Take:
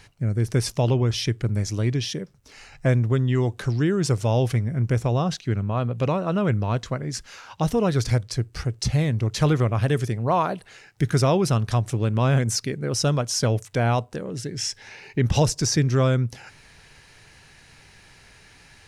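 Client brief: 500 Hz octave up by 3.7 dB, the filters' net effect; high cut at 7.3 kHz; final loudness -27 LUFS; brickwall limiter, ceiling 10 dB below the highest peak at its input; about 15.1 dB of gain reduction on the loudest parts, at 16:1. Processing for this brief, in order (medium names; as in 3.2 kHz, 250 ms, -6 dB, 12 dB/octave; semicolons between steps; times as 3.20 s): low-pass 7.3 kHz; peaking EQ 500 Hz +4.5 dB; compression 16:1, threshold -29 dBFS; trim +10 dB; peak limiter -18.5 dBFS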